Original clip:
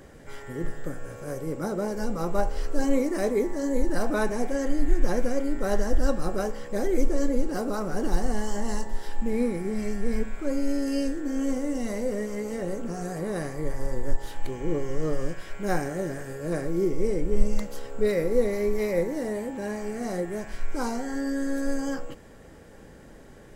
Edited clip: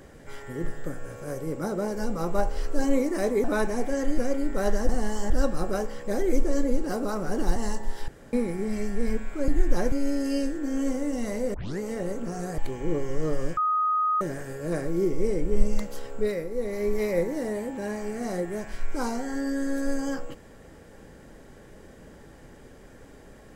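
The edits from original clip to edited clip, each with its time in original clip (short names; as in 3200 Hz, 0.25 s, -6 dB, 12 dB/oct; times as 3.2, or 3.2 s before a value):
3.44–4.06 cut
4.8–5.24 move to 10.54
8.21–8.62 move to 5.95
9.14–9.39 room tone
12.16 tape start 0.25 s
13.2–14.38 cut
15.37–16.01 bleep 1250 Hz -21 dBFS
17.9–18.73 dip -8.5 dB, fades 0.37 s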